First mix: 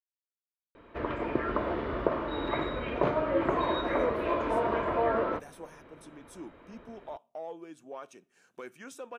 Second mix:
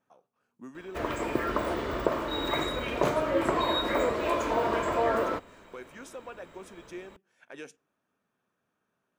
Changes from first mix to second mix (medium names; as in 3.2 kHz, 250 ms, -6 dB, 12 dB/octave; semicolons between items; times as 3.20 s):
speech: entry -2.85 s; background: remove distance through air 340 m